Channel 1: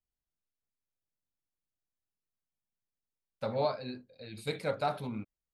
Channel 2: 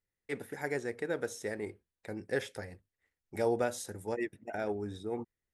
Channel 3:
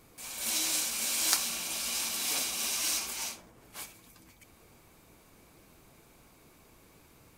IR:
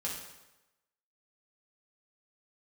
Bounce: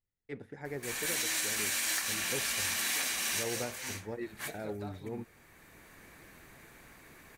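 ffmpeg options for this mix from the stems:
-filter_complex "[0:a]alimiter=level_in=3dB:limit=-24dB:level=0:latency=1:release=224,volume=-3dB,volume=-10dB,asplit=2[link_01][link_02];[1:a]lowpass=5000,lowshelf=frequency=270:gain=10.5,volume=-8dB[link_03];[2:a]equalizer=frequency=1800:width_type=o:width=0.5:gain=15,bandreject=frequency=5100:width=16,asoftclip=type=tanh:threshold=-13dB,adelay=650,volume=2dB[link_04];[link_02]apad=whole_len=353990[link_05];[link_04][link_05]sidechaincompress=threshold=-50dB:ratio=8:attack=16:release=1210[link_06];[link_01][link_03][link_06]amix=inputs=3:normalize=0,alimiter=limit=-22.5dB:level=0:latency=1:release=204"

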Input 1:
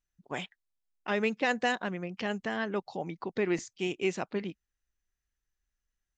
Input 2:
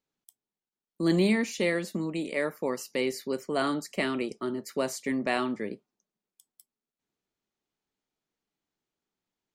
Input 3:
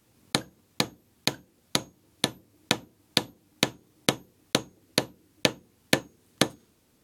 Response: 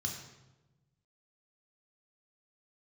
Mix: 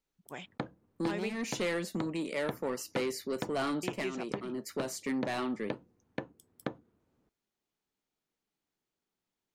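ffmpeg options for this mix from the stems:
-filter_complex "[0:a]volume=-8dB,asplit=3[link_01][link_02][link_03];[link_01]atrim=end=1.36,asetpts=PTS-STARTPTS,afade=type=out:start_time=1.356:duration=0.004:curve=hsin[link_04];[link_02]atrim=start=1.36:end=3.83,asetpts=PTS-STARTPTS,volume=0[link_05];[link_03]atrim=start=3.83,asetpts=PTS-STARTPTS,afade=type=in:duration=0.004:curve=hsin[link_06];[link_04][link_05][link_06]concat=n=3:v=0:a=1,asplit=2[link_07][link_08];[1:a]asoftclip=type=tanh:threshold=-26dB,volume=-1dB[link_09];[2:a]lowpass=1400,adelay=250,volume=-7.5dB[link_10];[link_08]apad=whole_len=420742[link_11];[link_09][link_11]sidechaincompress=threshold=-42dB:ratio=8:attack=50:release=278[link_12];[link_07][link_12][link_10]amix=inputs=3:normalize=0,alimiter=limit=-20.5dB:level=0:latency=1:release=268"

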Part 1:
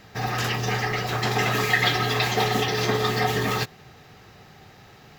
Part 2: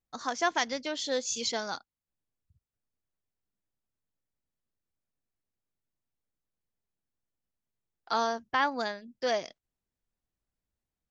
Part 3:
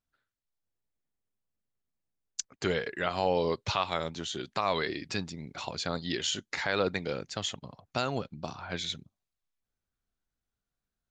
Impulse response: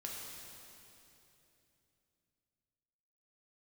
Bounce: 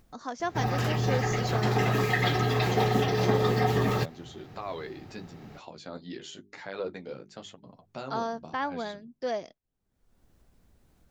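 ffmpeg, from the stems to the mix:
-filter_complex "[0:a]adelay=400,volume=-4dB[link_01];[1:a]volume=-4dB[link_02];[2:a]highpass=160,bandreject=frequency=50:width_type=h:width=6,bandreject=frequency=100:width_type=h:width=6,bandreject=frequency=150:width_type=h:width=6,bandreject=frequency=200:width_type=h:width=6,bandreject=frequency=250:width_type=h:width=6,bandreject=frequency=300:width_type=h:width=6,bandreject=frequency=350:width_type=h:width=6,bandreject=frequency=400:width_type=h:width=6,flanger=delay=10:depth=5.8:regen=-19:speed=0.91:shape=sinusoidal,volume=-5.5dB[link_03];[link_01][link_02][link_03]amix=inputs=3:normalize=0,acompressor=mode=upward:threshold=-44dB:ratio=2.5,tiltshelf=frequency=970:gain=5.5"

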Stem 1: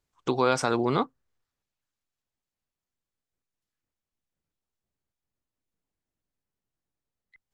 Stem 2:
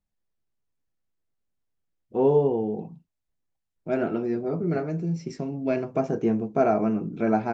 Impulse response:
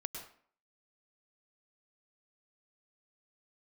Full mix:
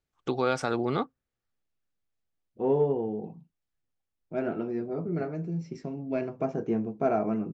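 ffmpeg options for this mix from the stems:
-filter_complex "[0:a]bandreject=frequency=1000:width=6,volume=-2.5dB[link_01];[1:a]adelay=450,volume=-4.5dB[link_02];[link_01][link_02]amix=inputs=2:normalize=0,highshelf=frequency=5900:gain=-9.5,aeval=exprs='0.237*(cos(1*acos(clip(val(0)/0.237,-1,1)))-cos(1*PI/2))+0.0015*(cos(7*acos(clip(val(0)/0.237,-1,1)))-cos(7*PI/2))':channel_layout=same"

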